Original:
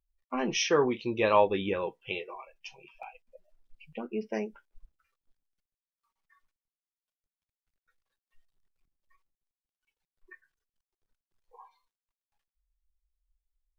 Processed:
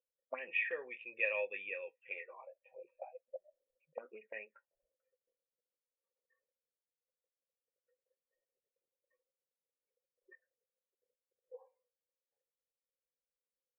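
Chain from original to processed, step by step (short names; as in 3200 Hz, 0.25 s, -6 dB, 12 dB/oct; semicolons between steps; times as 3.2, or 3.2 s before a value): vocal tract filter e; auto-wah 470–2700 Hz, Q 4.8, up, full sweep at -40 dBFS; gain +17 dB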